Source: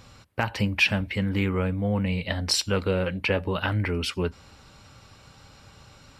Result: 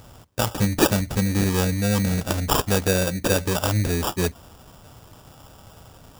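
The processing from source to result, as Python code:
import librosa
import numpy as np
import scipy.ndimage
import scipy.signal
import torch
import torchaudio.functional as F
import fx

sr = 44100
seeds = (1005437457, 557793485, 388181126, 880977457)

y = fx.sample_hold(x, sr, seeds[0], rate_hz=2100.0, jitter_pct=0)
y = fx.bass_treble(y, sr, bass_db=1, treble_db=7)
y = y * librosa.db_to_amplitude(3.0)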